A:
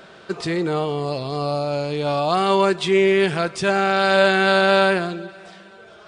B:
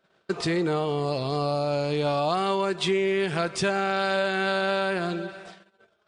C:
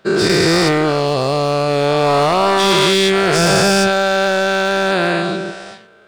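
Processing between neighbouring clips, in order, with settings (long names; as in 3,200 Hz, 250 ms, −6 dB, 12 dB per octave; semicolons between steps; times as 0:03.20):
noise gate −41 dBFS, range −27 dB; downward compressor 10 to 1, threshold −21 dBFS, peak gain reduction 10.5 dB
every bin's largest magnitude spread in time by 480 ms; gain into a clipping stage and back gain 14.5 dB; level +6.5 dB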